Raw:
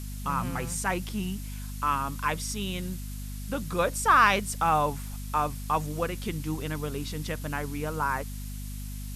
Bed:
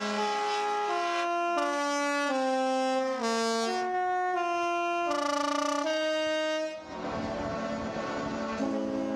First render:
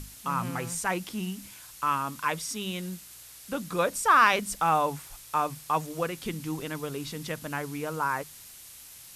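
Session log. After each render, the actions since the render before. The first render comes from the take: hum notches 50/100/150/200/250 Hz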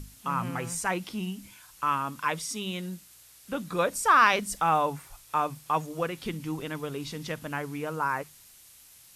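noise print and reduce 6 dB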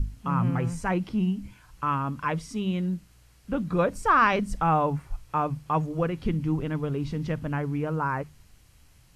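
RIAA curve playback; band-stop 3.6 kHz, Q 14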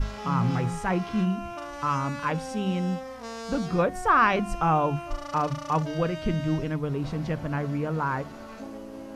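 add bed -9 dB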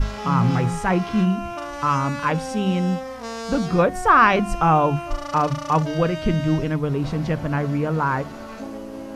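trim +6 dB

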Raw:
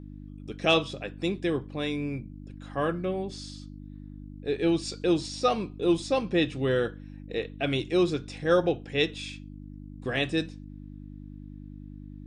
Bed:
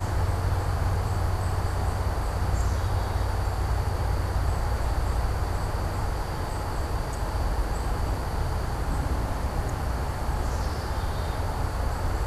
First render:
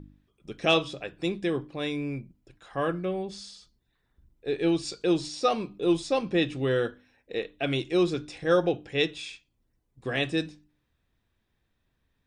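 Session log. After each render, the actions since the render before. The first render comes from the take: de-hum 50 Hz, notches 6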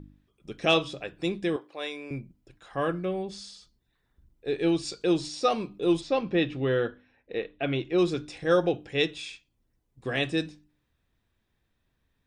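1.56–2.11 s: Chebyshev high-pass 580 Hz; 6.00–7.97 s: low-pass 4.2 kHz -> 2.7 kHz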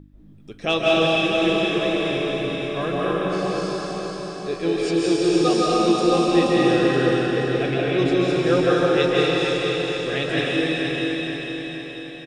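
feedback delay 476 ms, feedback 53%, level -6 dB; algorithmic reverb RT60 3.9 s, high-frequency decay 1×, pre-delay 115 ms, DRR -7 dB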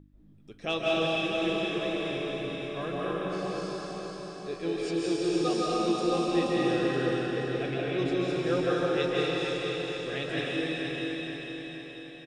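trim -9 dB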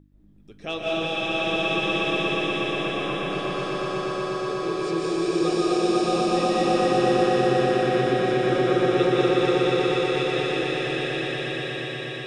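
echo with a slow build-up 121 ms, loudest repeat 5, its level -4 dB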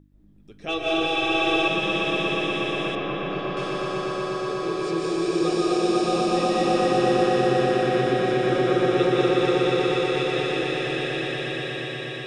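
0.68–1.68 s: comb 2.6 ms, depth 98%; 2.95–3.57 s: distance through air 180 m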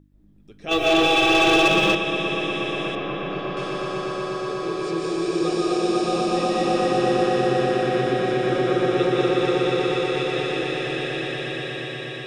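0.71–1.95 s: waveshaping leveller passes 2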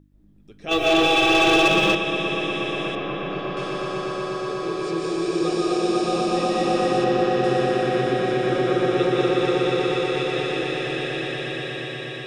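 7.04–7.44 s: distance through air 63 m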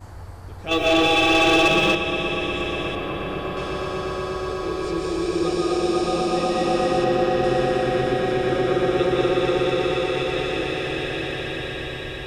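add bed -12.5 dB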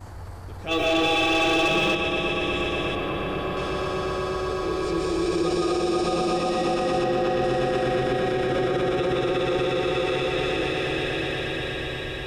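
transient shaper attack -2 dB, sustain +3 dB; peak limiter -15.5 dBFS, peak gain reduction 6 dB

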